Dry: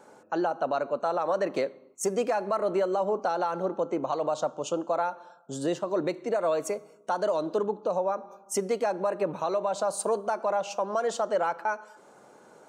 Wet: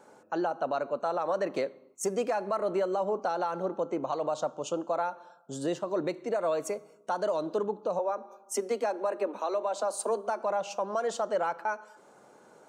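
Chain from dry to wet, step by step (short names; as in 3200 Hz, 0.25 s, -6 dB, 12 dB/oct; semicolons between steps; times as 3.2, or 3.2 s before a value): 7.99–10.42 steep high-pass 210 Hz 96 dB/oct; gain -2.5 dB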